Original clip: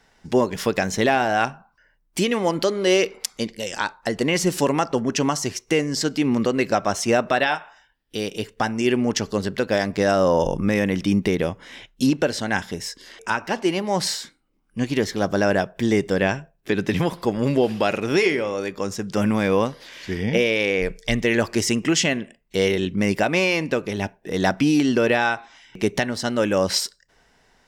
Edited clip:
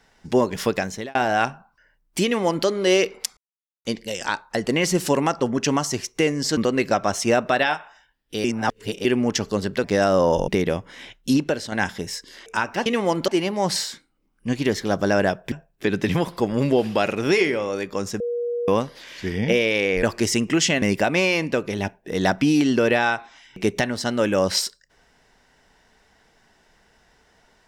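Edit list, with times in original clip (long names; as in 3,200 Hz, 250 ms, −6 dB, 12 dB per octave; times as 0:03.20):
0:00.69–0:01.15: fade out
0:02.24–0:02.66: duplicate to 0:13.59
0:03.37: splice in silence 0.48 s
0:06.09–0:06.38: remove
0:08.25–0:08.86: reverse
0:09.65–0:09.91: remove
0:10.55–0:11.21: remove
0:12.06–0:12.45: fade out, to −6.5 dB
0:15.83–0:16.37: remove
0:19.05–0:19.53: beep over 478 Hz −22.5 dBFS
0:20.88–0:21.38: remove
0:22.17–0:23.01: remove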